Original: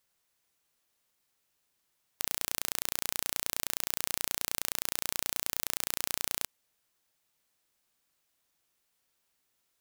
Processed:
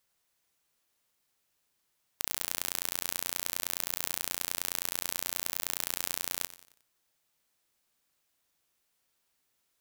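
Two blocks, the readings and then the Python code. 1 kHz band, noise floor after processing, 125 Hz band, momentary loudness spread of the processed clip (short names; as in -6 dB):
0.0 dB, -77 dBFS, +0.5 dB, 2 LU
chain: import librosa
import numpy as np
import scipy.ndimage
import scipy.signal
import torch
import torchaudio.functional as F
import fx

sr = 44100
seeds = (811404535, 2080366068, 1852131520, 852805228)

y = fx.echo_feedback(x, sr, ms=90, feedback_pct=44, wet_db=-16)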